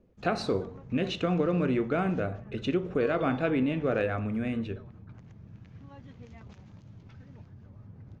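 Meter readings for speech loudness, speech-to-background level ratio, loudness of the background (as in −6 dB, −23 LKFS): −29.5 LKFS, 19.5 dB, −49.0 LKFS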